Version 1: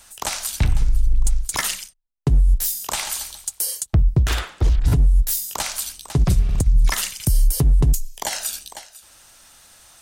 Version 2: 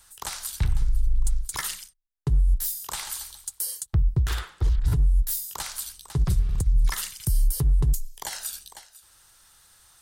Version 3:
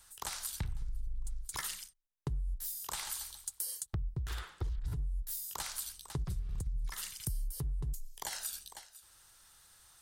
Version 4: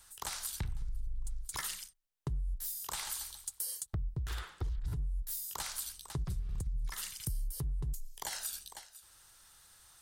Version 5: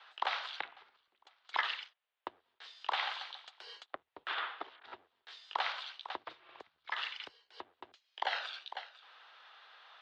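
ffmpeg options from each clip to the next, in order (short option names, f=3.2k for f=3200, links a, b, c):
-af "equalizer=f=250:t=o:w=0.67:g=-10,equalizer=f=630:t=o:w=0.67:g=-9,equalizer=f=2.5k:t=o:w=0.67:g=-6,equalizer=f=6.3k:t=o:w=0.67:g=-4,volume=-5dB"
-af "acompressor=threshold=-29dB:ratio=6,volume=-5dB"
-af "asoftclip=type=tanh:threshold=-26dB,volume=1dB"
-af "highpass=f=580:t=q:w=0.5412,highpass=f=580:t=q:w=1.307,lowpass=f=3.6k:t=q:w=0.5176,lowpass=f=3.6k:t=q:w=0.7071,lowpass=f=3.6k:t=q:w=1.932,afreqshift=-52,volume=10dB"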